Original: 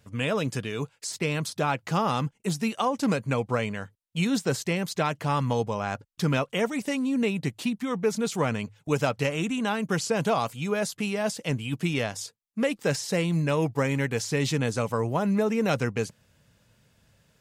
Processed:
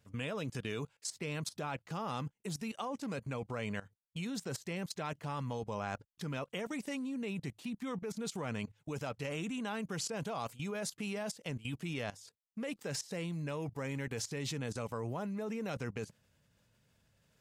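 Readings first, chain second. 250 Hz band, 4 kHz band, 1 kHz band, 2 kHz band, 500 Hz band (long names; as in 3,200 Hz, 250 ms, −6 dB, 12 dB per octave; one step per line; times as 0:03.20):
−12.0 dB, −10.5 dB, −13.0 dB, −12.0 dB, −13.5 dB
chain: output level in coarse steps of 17 dB
level −4 dB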